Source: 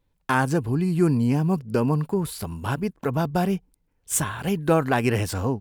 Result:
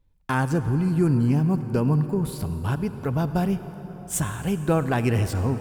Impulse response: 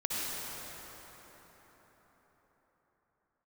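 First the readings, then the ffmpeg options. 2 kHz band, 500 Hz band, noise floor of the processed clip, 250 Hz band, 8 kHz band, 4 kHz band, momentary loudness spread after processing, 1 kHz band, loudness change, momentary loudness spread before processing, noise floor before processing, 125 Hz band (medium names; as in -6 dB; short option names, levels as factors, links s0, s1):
-3.5 dB, -2.5 dB, -42 dBFS, 0.0 dB, -3.5 dB, -3.5 dB, 8 LU, -3.5 dB, 0.0 dB, 7 LU, -70 dBFS, +2.5 dB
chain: -filter_complex "[0:a]lowshelf=f=140:g=12,asplit=2[s0][s1];[1:a]atrim=start_sample=2205[s2];[s1][s2]afir=irnorm=-1:irlink=0,volume=0.15[s3];[s0][s3]amix=inputs=2:normalize=0,volume=0.562"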